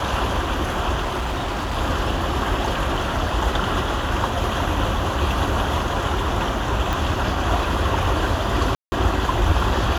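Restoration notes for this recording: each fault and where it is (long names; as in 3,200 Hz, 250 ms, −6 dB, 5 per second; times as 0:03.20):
0:01.01–0:01.78: clipping −21 dBFS
0:06.93: click
0:08.75–0:08.92: drop-out 170 ms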